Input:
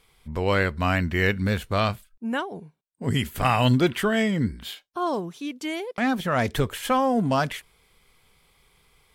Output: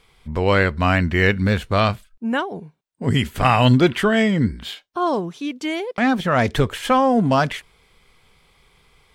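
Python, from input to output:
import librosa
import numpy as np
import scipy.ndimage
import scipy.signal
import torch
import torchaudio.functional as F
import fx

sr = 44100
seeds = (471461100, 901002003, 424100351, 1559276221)

y = fx.peak_eq(x, sr, hz=14000.0, db=-11.0, octaves=1.0)
y = y * 10.0 ** (5.5 / 20.0)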